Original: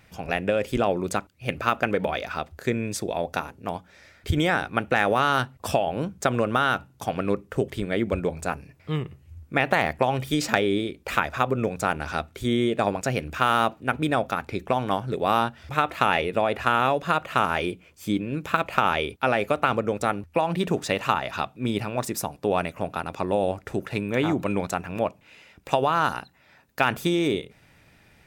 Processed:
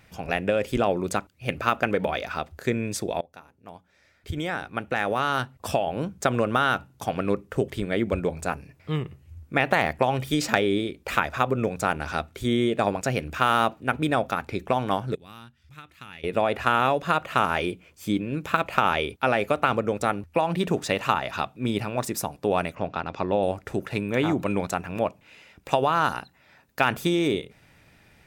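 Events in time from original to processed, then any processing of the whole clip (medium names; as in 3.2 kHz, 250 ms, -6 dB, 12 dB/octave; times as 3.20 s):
3.21–6.30 s: fade in linear, from -23.5 dB
15.15–16.24 s: amplifier tone stack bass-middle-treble 6-0-2
22.75–23.43 s: low-pass 5.8 kHz 24 dB/octave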